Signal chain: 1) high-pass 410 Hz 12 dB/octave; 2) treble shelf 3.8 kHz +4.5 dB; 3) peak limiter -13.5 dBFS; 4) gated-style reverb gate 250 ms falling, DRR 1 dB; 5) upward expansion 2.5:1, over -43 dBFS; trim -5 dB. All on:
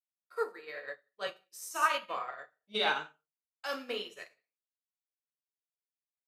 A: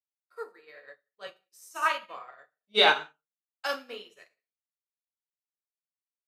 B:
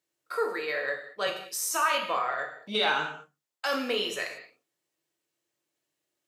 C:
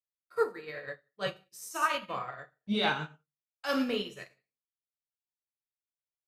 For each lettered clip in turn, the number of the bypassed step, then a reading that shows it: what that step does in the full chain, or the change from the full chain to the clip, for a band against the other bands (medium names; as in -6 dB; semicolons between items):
3, crest factor change +2.0 dB; 5, 8 kHz band +5.5 dB; 1, 250 Hz band +14.5 dB